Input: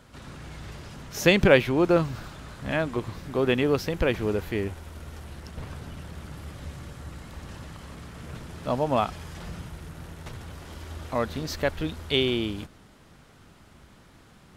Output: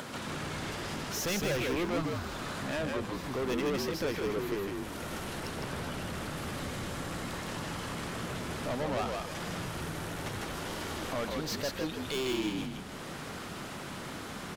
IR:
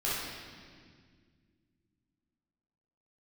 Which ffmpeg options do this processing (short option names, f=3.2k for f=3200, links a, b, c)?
-filter_complex "[0:a]highpass=190,acompressor=mode=upward:threshold=-29dB:ratio=2.5,asoftclip=type=tanh:threshold=-30.5dB,asplit=5[a][b][c][d][e];[b]adelay=157,afreqshift=-59,volume=-3dB[f];[c]adelay=314,afreqshift=-118,volume=-12.9dB[g];[d]adelay=471,afreqshift=-177,volume=-22.8dB[h];[e]adelay=628,afreqshift=-236,volume=-32.7dB[i];[a][f][g][h][i]amix=inputs=5:normalize=0"